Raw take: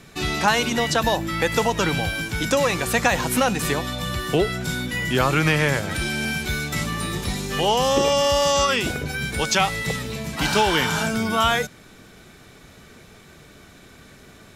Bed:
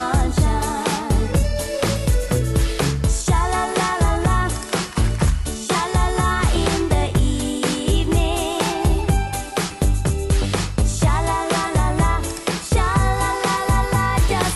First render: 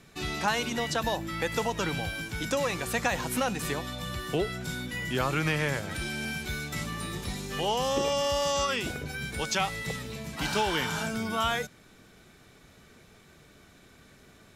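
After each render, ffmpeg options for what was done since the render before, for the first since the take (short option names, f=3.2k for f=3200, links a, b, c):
-af "volume=-8.5dB"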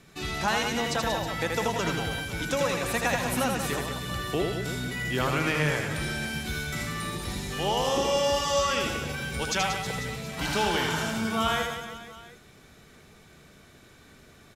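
-af "aecho=1:1:80|184|319.2|495|723.4:0.631|0.398|0.251|0.158|0.1"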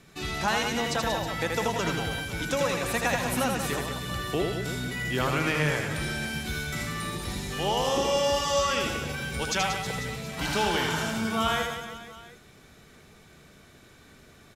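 -af anull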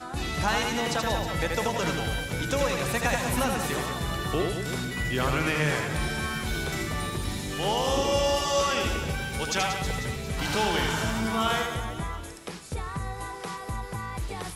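-filter_complex "[1:a]volume=-16dB[a];[0:a][a]amix=inputs=2:normalize=0"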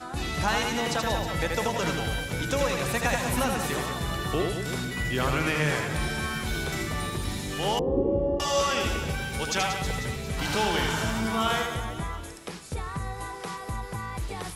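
-filter_complex "[0:a]asettb=1/sr,asplit=3[a][b][c];[a]atrim=end=7.794[d];[b]atrim=start=7.79:end=8.4,asetpts=PTS-STARTPTS,afade=t=in:d=0.004:c=qsin,afade=t=out:st=0.606:d=0.004:c=qsin,lowpass=f=390:t=q:w=2.5[e];[c]atrim=start=8.396[f];[d][e]acrossfade=d=0.004:c1=hsin:c2=qsin[g];[g][f]acrossfade=d=0.004:c1=qsin:c2=hsin"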